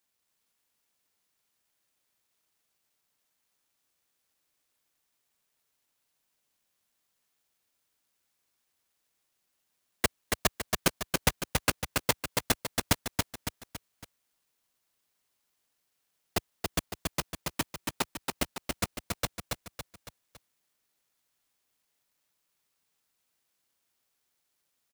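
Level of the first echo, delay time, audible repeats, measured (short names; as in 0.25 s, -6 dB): -3.5 dB, 0.279 s, 4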